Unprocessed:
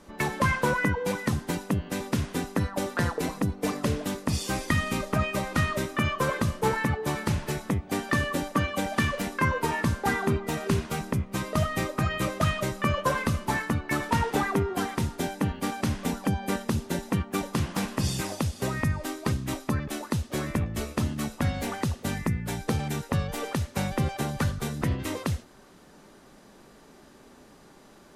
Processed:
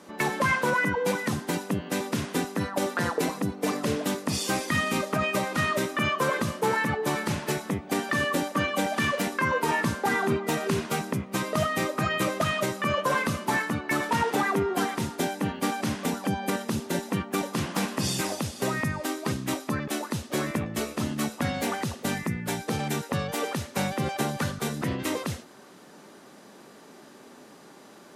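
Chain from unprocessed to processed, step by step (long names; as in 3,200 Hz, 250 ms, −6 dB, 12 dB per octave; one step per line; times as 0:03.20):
high-pass filter 180 Hz 12 dB per octave
brickwall limiter −19 dBFS, peak gain reduction 8.5 dB
level +4 dB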